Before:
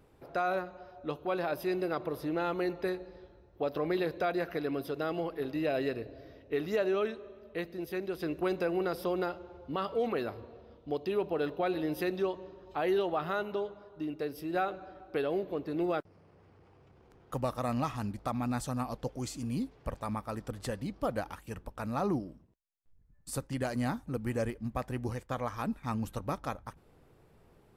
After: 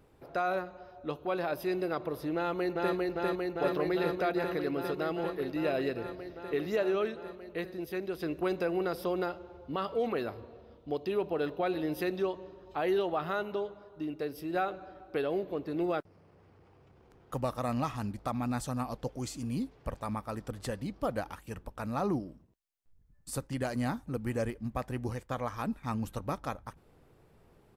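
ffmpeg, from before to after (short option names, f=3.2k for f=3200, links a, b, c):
-filter_complex "[0:a]asplit=2[a][b];[b]afade=t=in:st=2.35:d=0.01,afade=t=out:st=2.95:d=0.01,aecho=0:1:400|800|1200|1600|2000|2400|2800|3200|3600|4000|4400|4800:0.891251|0.757563|0.643929|0.547339|0.465239|0.395453|0.336135|0.285715|0.242857|0.206429|0.175464|0.149145[c];[a][c]amix=inputs=2:normalize=0"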